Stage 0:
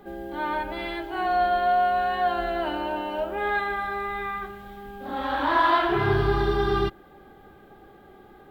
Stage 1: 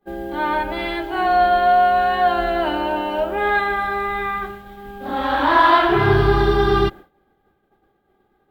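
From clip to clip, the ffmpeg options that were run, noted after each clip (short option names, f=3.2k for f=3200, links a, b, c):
-af "agate=range=-33dB:threshold=-36dB:ratio=3:detection=peak,volume=7dB"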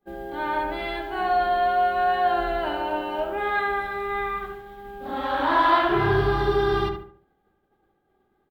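-filter_complex "[0:a]asplit=2[a][b];[b]adelay=72,lowpass=f=2.1k:p=1,volume=-5dB,asplit=2[c][d];[d]adelay=72,lowpass=f=2.1k:p=1,volume=0.37,asplit=2[e][f];[f]adelay=72,lowpass=f=2.1k:p=1,volume=0.37,asplit=2[g][h];[h]adelay=72,lowpass=f=2.1k:p=1,volume=0.37,asplit=2[i][j];[j]adelay=72,lowpass=f=2.1k:p=1,volume=0.37[k];[a][c][e][g][i][k]amix=inputs=6:normalize=0,volume=-6.5dB"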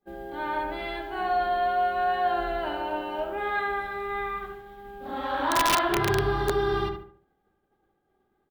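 -af "aeval=exprs='(mod(3.76*val(0)+1,2)-1)/3.76':c=same,volume=-3.5dB"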